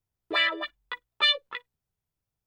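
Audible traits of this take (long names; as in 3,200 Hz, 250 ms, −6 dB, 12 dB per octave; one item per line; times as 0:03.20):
background noise floor −88 dBFS
spectral slope +5.0 dB per octave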